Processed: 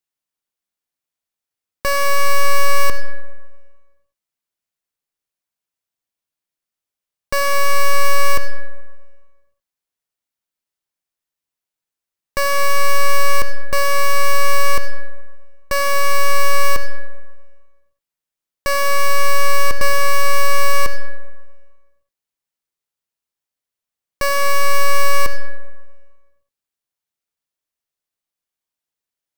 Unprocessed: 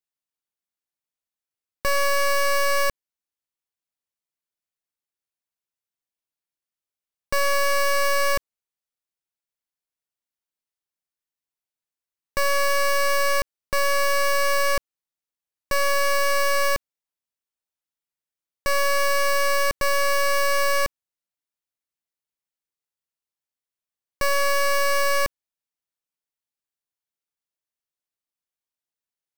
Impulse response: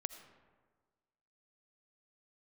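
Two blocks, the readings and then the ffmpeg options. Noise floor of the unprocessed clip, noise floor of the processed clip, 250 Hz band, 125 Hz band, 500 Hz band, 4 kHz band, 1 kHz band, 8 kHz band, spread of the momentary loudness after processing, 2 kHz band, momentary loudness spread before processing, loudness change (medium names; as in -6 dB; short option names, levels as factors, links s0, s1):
under -85 dBFS, under -85 dBFS, +6.0 dB, +14.5 dB, +1.5 dB, +3.0 dB, +5.5 dB, +3.5 dB, 10 LU, +3.0 dB, 6 LU, +3.5 dB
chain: -filter_complex "[1:a]atrim=start_sample=2205[s0];[0:a][s0]afir=irnorm=-1:irlink=0,volume=2"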